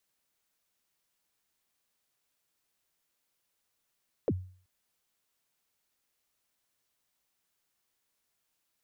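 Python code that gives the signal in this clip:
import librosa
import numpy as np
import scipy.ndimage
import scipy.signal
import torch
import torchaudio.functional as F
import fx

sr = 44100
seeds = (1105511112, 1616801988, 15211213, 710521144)

y = fx.drum_kick(sr, seeds[0], length_s=0.38, level_db=-22.0, start_hz=580.0, end_hz=92.0, sweep_ms=47.0, decay_s=0.46, click=False)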